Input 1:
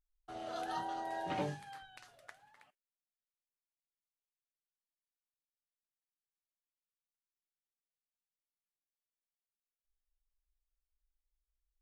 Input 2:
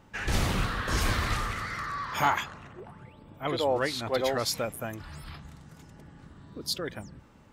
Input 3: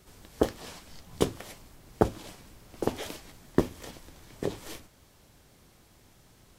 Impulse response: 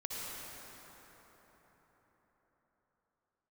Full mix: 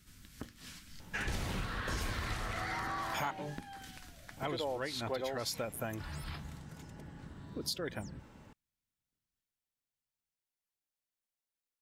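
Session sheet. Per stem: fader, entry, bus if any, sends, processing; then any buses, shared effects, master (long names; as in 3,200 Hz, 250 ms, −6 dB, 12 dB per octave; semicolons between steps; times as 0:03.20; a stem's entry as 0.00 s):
+1.0 dB, 2.00 s, no send, no echo send, no processing
+0.5 dB, 1.00 s, muted 0:03.31–0:04.37, no send, no echo send, no processing
−3.5 dB, 0.00 s, no send, echo send −16 dB, flat-topped bell 590 Hz −15.5 dB; downward compressor 10 to 1, threshold −38 dBFS, peak gain reduction 18.5 dB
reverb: not used
echo: repeating echo 940 ms, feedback 36%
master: notch filter 1,200 Hz, Q 14; downward compressor 6 to 1, threshold −34 dBFS, peak gain reduction 13.5 dB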